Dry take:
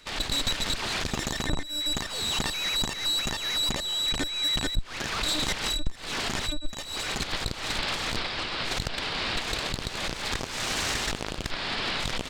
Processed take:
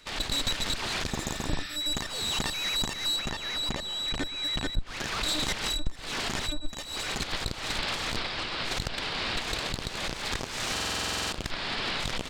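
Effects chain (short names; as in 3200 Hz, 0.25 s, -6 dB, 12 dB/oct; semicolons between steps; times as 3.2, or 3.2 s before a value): 1.16–1.74 spectral repair 1200–5900 Hz before; 3.16–4.87 high shelf 5900 Hz -10.5 dB; on a send: analogue delay 0.122 s, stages 1024, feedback 51%, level -19 dB; on the sum: stuck buffer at 10.72, samples 2048, times 12; gain -1.5 dB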